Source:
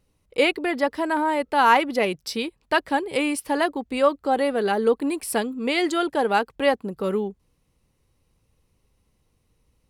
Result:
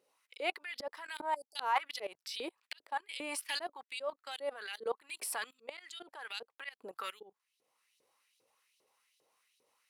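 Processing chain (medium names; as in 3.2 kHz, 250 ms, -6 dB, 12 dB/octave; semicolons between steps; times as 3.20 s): LFO high-pass saw up 2.5 Hz 390–4200 Hz; spectral selection erased 1.35–1.56 s, 830–4500 Hz; level held to a coarse grid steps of 21 dB; slow attack 748 ms; trim +7.5 dB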